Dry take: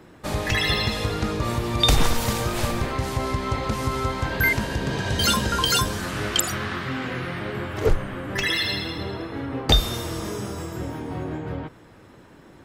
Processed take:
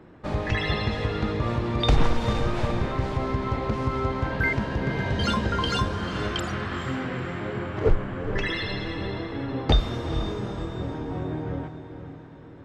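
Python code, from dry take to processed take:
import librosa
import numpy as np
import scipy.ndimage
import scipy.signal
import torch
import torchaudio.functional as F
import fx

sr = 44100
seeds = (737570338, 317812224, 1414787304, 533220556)

p1 = fx.spacing_loss(x, sr, db_at_10k=25)
y = p1 + fx.echo_diffused(p1, sr, ms=458, feedback_pct=43, wet_db=-10.0, dry=0)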